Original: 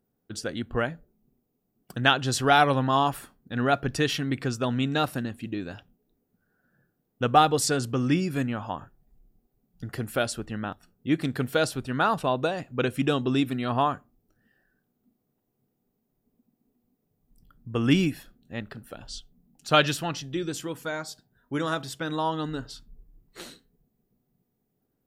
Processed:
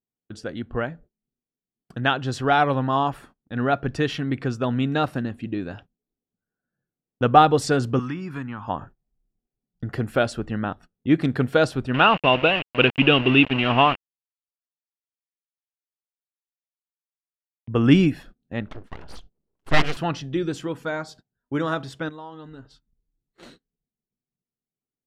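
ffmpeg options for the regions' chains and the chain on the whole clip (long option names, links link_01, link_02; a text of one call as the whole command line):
ffmpeg -i in.wav -filter_complex "[0:a]asettb=1/sr,asplit=3[link_01][link_02][link_03];[link_01]atrim=end=7.994[link_04];[link_02]atrim=start=7.99:end=8.68,asetpts=PTS-STARTPTS,afade=type=in:duration=0.004:curve=qsin,afade=type=out:start_time=0.686:duration=0.004:curve=qsin,lowshelf=frequency=770:width_type=q:width=3:gain=-7.5,acrossover=split=480|1700[link_05][link_06][link_07];[link_05]acompressor=threshold=-34dB:ratio=4[link_08];[link_06]acompressor=threshold=-45dB:ratio=4[link_09];[link_07]acompressor=threshold=-49dB:ratio=4[link_10];[link_08][link_09][link_10]amix=inputs=3:normalize=0[link_11];[link_03]atrim=start=8.676[link_12];[link_04][link_11]acrossfade=duration=0.004:curve1=hsin:curve2=qsin[link_13];[link_13][link_12]acrossfade=duration=0.004:curve1=qsin:curve2=hsin,asettb=1/sr,asplit=3[link_14][link_15][link_16];[link_14]atrim=end=11.944[link_17];[link_15]atrim=start=11.94:end=17.68,asetpts=PTS-STARTPTS,afade=type=in:duration=0.004:curve=qsin,afade=type=out:start_time=5.736:duration=0.004:curve=qsin,aeval=exprs='val(0)*gte(abs(val(0)),0.0266)':channel_layout=same,lowpass=frequency=2800:width_type=q:width=11[link_18];[link_16]atrim=start=17.676[link_19];[link_17][link_18]acrossfade=duration=0.004:curve1=hsin:curve2=qsin[link_20];[link_20][link_19]acrossfade=duration=0.004:curve1=qsin:curve2=hsin,asettb=1/sr,asplit=3[link_21][link_22][link_23];[link_21]atrim=end=18.684[link_24];[link_22]atrim=start=18.68:end=19.97,asetpts=PTS-STARTPTS,afade=type=in:duration=0.004:curve=qsin,afade=type=out:start_time=1.286:duration=0.004:curve=qsin,lowpass=5500,equalizer=frequency=3600:width_type=o:width=0.27:gain=-5,aeval=exprs='abs(val(0))':channel_layout=same[link_25];[link_23]atrim=start=19.966[link_26];[link_24][link_25]acrossfade=duration=0.004:curve1=hsin:curve2=qsin[link_27];[link_27][link_26]acrossfade=duration=0.004:curve1=qsin:curve2=hsin,asettb=1/sr,asplit=3[link_28][link_29][link_30];[link_28]atrim=end=22.094[link_31];[link_29]atrim=start=22.09:end=23.43,asetpts=PTS-STARTPTS,afade=type=in:duration=0.004:curve=qsin,afade=type=out:start_time=1.336:duration=0.004:curve=qsin,acompressor=threshold=-50dB:ratio=2:attack=3.2:release=140:knee=1:detection=peak,asplit=2[link_32][link_33];[link_33]adelay=15,volume=-9.5dB[link_34];[link_32][link_34]amix=inputs=2:normalize=0,atrim=end_sample=59094[link_35];[link_30]atrim=start=23.426[link_36];[link_31][link_35]acrossfade=duration=0.004:curve1=hsin:curve2=qsin[link_37];[link_37][link_36]acrossfade=duration=0.004:curve1=qsin:curve2=hsin,agate=range=-21dB:threshold=-48dB:ratio=16:detection=peak,aemphasis=mode=reproduction:type=75fm,dynaudnorm=framelen=780:gausssize=13:maxgain=11.5dB" out.wav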